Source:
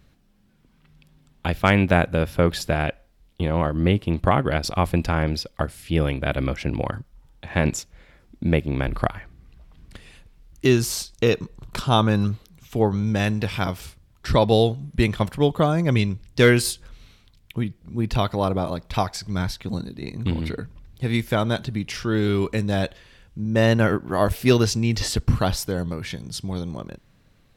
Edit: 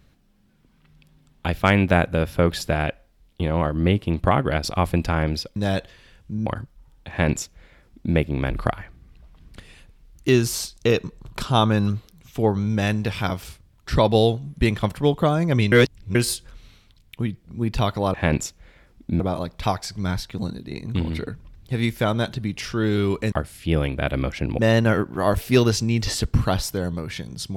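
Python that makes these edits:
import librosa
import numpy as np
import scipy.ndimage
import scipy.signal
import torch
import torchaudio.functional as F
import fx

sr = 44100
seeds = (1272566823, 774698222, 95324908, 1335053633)

y = fx.edit(x, sr, fx.swap(start_s=5.56, length_s=1.27, other_s=22.63, other_length_s=0.9),
    fx.duplicate(start_s=7.47, length_s=1.06, to_s=18.51),
    fx.reverse_span(start_s=16.09, length_s=0.43), tone=tone)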